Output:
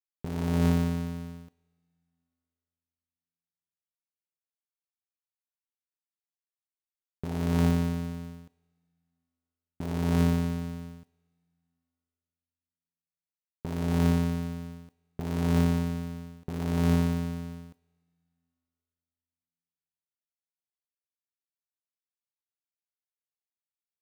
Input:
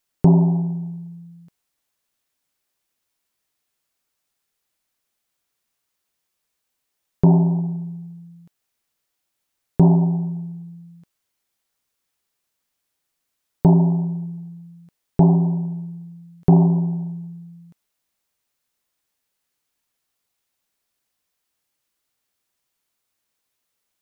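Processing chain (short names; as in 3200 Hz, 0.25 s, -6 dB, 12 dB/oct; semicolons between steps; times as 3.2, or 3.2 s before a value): cycle switcher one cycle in 2, muted; expander -44 dBFS; negative-ratio compressor -26 dBFS, ratio -1; on a send: reverb, pre-delay 3 ms, DRR 21.5 dB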